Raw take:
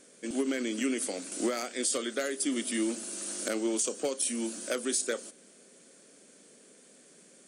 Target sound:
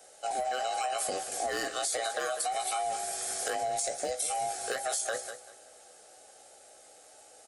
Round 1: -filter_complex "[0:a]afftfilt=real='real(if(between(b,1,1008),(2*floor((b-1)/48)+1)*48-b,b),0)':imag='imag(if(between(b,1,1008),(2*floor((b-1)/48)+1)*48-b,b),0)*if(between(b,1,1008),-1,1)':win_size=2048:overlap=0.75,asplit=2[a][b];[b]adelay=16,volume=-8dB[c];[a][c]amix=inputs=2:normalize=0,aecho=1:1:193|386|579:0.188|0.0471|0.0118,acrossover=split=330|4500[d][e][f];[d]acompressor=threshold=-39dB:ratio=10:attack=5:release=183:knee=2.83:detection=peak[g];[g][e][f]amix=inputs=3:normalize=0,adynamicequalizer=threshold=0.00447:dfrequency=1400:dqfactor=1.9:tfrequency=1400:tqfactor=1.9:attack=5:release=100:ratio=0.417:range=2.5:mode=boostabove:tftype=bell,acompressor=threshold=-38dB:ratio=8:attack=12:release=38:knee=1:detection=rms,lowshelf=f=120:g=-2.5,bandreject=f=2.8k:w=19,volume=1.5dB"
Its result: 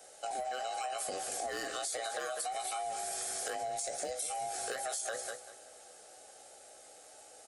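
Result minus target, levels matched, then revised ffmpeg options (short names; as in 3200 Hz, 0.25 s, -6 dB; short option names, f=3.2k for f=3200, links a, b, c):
compressor: peak gain reduction +5.5 dB
-filter_complex "[0:a]afftfilt=real='real(if(between(b,1,1008),(2*floor((b-1)/48)+1)*48-b,b),0)':imag='imag(if(between(b,1,1008),(2*floor((b-1)/48)+1)*48-b,b),0)*if(between(b,1,1008),-1,1)':win_size=2048:overlap=0.75,asplit=2[a][b];[b]adelay=16,volume=-8dB[c];[a][c]amix=inputs=2:normalize=0,aecho=1:1:193|386|579:0.188|0.0471|0.0118,acrossover=split=330|4500[d][e][f];[d]acompressor=threshold=-39dB:ratio=10:attack=5:release=183:knee=2.83:detection=peak[g];[g][e][f]amix=inputs=3:normalize=0,adynamicequalizer=threshold=0.00447:dfrequency=1400:dqfactor=1.9:tfrequency=1400:tqfactor=1.9:attack=5:release=100:ratio=0.417:range=2.5:mode=boostabove:tftype=bell,acompressor=threshold=-31.5dB:ratio=8:attack=12:release=38:knee=1:detection=rms,lowshelf=f=120:g=-2.5,bandreject=f=2.8k:w=19,volume=1.5dB"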